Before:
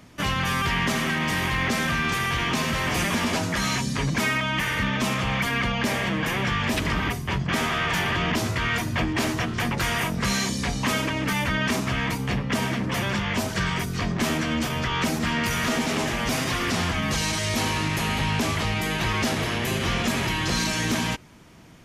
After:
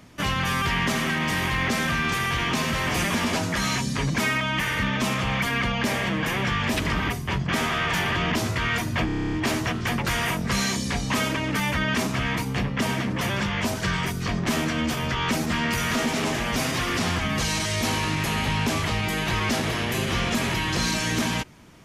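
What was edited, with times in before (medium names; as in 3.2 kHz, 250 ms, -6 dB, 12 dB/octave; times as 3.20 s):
9.06 s: stutter 0.03 s, 10 plays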